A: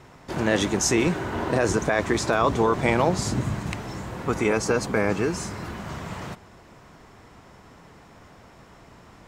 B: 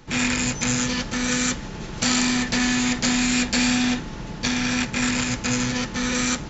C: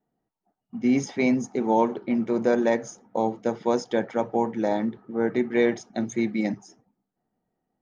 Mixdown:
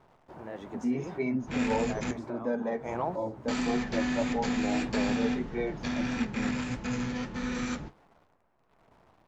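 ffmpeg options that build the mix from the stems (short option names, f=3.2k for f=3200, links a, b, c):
-filter_complex "[0:a]equalizer=f=780:t=o:w=1.7:g=8.5,tremolo=f=1:d=0.59,acrusher=bits=8:dc=4:mix=0:aa=0.000001,volume=-11dB[a];[1:a]adelay=1400,volume=-3dB,asplit=3[b][c][d];[b]atrim=end=2.11,asetpts=PTS-STARTPTS,afade=t=out:st=2.106:d=0.004:c=hsin[e];[c]atrim=start=2.11:end=3.48,asetpts=PTS-STARTPTS,volume=0[f];[d]atrim=start=3.48,asetpts=PTS-STARTPTS,afade=t=in:d=0.004:c=hsin[g];[e][f][g]concat=n=3:v=0:a=1[h];[2:a]aecho=1:1:7.1:0.42,asplit=2[i][j];[j]adelay=2.1,afreqshift=-1.1[k];[i][k]amix=inputs=2:normalize=1,volume=-1.5dB,asplit=2[l][m];[m]apad=whole_len=409159[n];[a][n]sidechaincompress=threshold=-33dB:ratio=8:attack=6.9:release=205[o];[o][h][l]amix=inputs=3:normalize=0,lowpass=f=1.4k:p=1,flanger=delay=4.5:depth=9:regen=-57:speed=1.6:shape=sinusoidal"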